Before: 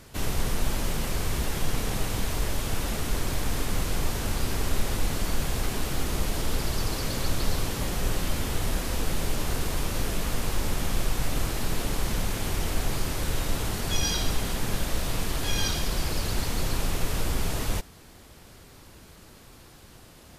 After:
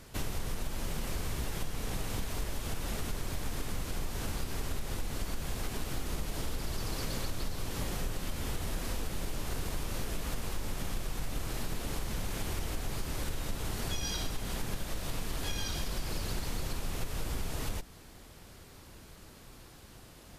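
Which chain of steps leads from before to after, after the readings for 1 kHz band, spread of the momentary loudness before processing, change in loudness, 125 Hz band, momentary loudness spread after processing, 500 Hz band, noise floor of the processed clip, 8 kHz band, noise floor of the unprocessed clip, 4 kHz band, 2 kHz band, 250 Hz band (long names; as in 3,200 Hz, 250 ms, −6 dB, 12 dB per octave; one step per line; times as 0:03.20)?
−8.0 dB, 2 LU, −8.0 dB, −8.0 dB, 16 LU, −8.0 dB, −53 dBFS, −8.5 dB, −50 dBFS, −8.0 dB, −8.0 dB, −8.0 dB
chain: sub-octave generator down 2 octaves, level −4 dB
downward compressor, threshold −27 dBFS, peak gain reduction 10.5 dB
level −3 dB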